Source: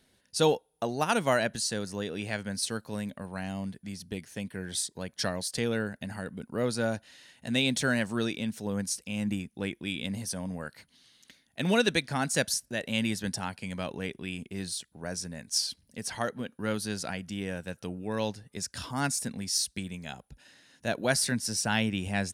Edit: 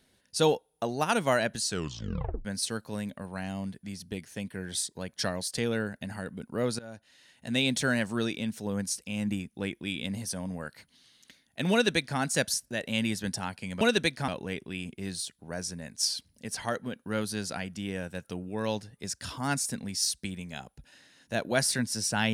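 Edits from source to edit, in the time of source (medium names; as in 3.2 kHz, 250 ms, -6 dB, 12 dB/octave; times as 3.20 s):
1.66 s: tape stop 0.79 s
6.79–7.62 s: fade in, from -21 dB
11.72–12.19 s: copy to 13.81 s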